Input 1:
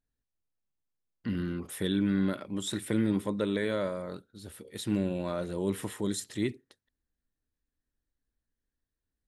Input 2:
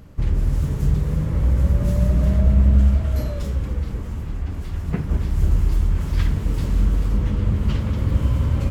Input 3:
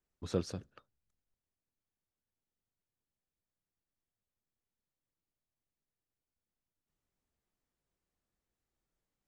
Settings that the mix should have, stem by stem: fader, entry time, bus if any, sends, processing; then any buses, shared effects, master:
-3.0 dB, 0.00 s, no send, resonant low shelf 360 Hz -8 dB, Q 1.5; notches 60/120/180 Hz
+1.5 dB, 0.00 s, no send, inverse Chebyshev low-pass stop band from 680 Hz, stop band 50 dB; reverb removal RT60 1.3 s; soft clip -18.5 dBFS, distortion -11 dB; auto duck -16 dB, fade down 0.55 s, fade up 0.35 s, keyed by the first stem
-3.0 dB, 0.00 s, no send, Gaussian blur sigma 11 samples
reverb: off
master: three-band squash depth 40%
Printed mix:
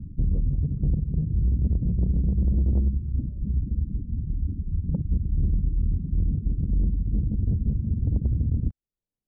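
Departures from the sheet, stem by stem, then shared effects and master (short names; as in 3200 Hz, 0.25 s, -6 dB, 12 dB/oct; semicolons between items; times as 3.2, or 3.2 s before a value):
stem 1: muted; stem 3 -3.0 dB -> -10.0 dB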